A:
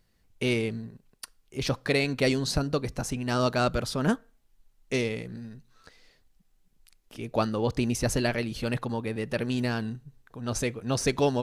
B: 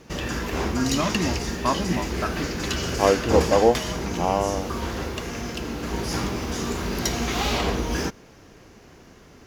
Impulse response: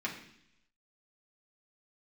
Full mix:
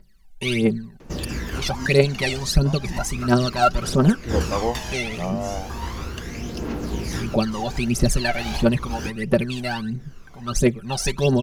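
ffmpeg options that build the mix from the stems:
-filter_complex "[0:a]aecho=1:1:5.2:0.67,aphaser=in_gain=1:out_gain=1:delay=1.5:decay=0.8:speed=1.5:type=triangular,volume=0dB,asplit=2[link_01][link_02];[1:a]aphaser=in_gain=1:out_gain=1:delay=1.7:decay=0.58:speed=0.35:type=triangular,adelay=1000,volume=-4dB[link_03];[link_02]apad=whole_len=461505[link_04];[link_03][link_04]sidechaincompress=threshold=-30dB:ratio=10:attack=16:release=179[link_05];[link_01][link_05]amix=inputs=2:normalize=0"

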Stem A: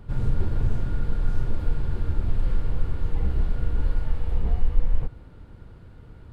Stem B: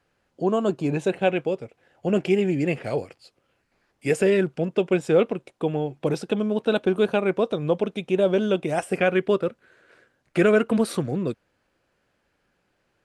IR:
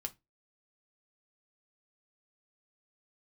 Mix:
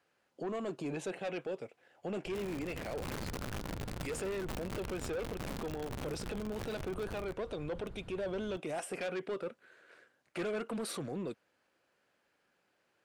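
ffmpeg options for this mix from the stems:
-filter_complex "[0:a]acompressor=threshold=-28dB:ratio=6,aeval=exprs='(mod(39.8*val(0)+1,2)-1)/39.8':channel_layout=same,adelay=2250,volume=-3dB[link_01];[1:a]highpass=frequency=360:poles=1,asoftclip=type=tanh:threshold=-22dB,volume=-3.5dB[link_02];[link_01][link_02]amix=inputs=2:normalize=0,alimiter=level_in=8dB:limit=-24dB:level=0:latency=1:release=40,volume=-8dB"

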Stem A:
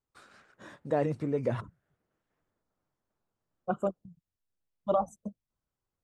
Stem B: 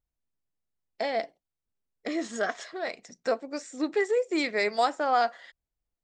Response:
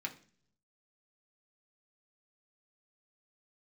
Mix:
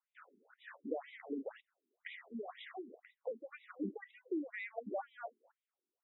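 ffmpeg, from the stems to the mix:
-filter_complex "[0:a]volume=2dB[link_01];[1:a]acompressor=threshold=-29dB:ratio=6,volume=-1.5dB[link_02];[link_01][link_02]amix=inputs=2:normalize=0,acrossover=split=280[link_03][link_04];[link_04]acompressor=threshold=-36dB:ratio=6[link_05];[link_03][link_05]amix=inputs=2:normalize=0,asoftclip=type=tanh:threshold=-25.5dB,afftfilt=real='re*between(b*sr/1024,290*pow(2800/290,0.5+0.5*sin(2*PI*2*pts/sr))/1.41,290*pow(2800/290,0.5+0.5*sin(2*PI*2*pts/sr))*1.41)':imag='im*between(b*sr/1024,290*pow(2800/290,0.5+0.5*sin(2*PI*2*pts/sr))/1.41,290*pow(2800/290,0.5+0.5*sin(2*PI*2*pts/sr))*1.41)':win_size=1024:overlap=0.75"

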